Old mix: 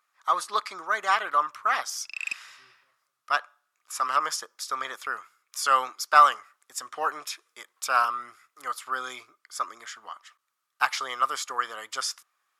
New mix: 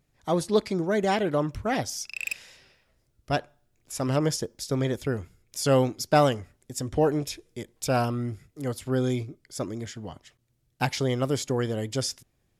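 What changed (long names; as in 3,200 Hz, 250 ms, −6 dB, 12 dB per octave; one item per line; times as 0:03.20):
speech: remove high-pass with resonance 1,200 Hz, resonance Q 7.2
background: remove low-pass filter 7,000 Hz 12 dB per octave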